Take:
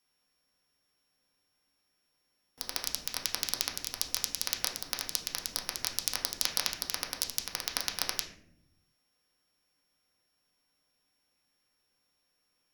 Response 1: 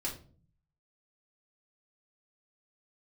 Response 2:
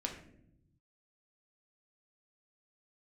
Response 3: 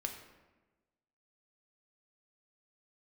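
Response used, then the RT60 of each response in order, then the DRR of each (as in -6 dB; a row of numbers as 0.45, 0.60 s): 2; 0.45 s, not exponential, 1.2 s; -5.0, 0.5, 3.5 dB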